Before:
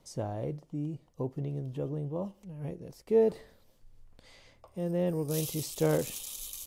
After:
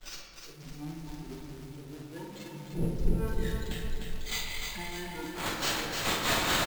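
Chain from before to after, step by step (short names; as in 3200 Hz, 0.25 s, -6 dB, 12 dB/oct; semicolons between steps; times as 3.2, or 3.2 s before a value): infinite clipping; 2.72–3.28 RIAA curve playback; spectral noise reduction 17 dB; expander -35 dBFS; high shelf 2000 Hz +11.5 dB; sample-rate reducer 11000 Hz, jitter 0%; tube stage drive 23 dB, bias 0.55; tremolo 4.6 Hz, depth 87%; doubler 48 ms -7 dB; reverb RT60 2.0 s, pre-delay 3 ms, DRR 1 dB; lo-fi delay 0.303 s, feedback 55%, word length 9-bit, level -4 dB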